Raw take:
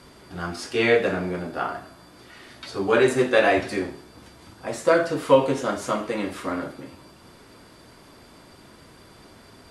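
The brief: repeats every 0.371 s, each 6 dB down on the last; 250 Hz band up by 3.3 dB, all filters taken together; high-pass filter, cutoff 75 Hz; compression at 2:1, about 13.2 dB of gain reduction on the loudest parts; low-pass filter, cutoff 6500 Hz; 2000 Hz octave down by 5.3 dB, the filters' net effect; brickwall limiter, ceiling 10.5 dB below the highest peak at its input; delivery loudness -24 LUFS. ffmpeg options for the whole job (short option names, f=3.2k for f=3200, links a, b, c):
-af "highpass=75,lowpass=6.5k,equalizer=f=250:t=o:g=4.5,equalizer=f=2k:t=o:g=-7,acompressor=threshold=-35dB:ratio=2,alimiter=level_in=2dB:limit=-24dB:level=0:latency=1,volume=-2dB,aecho=1:1:371|742|1113|1484|1855|2226:0.501|0.251|0.125|0.0626|0.0313|0.0157,volume=12dB"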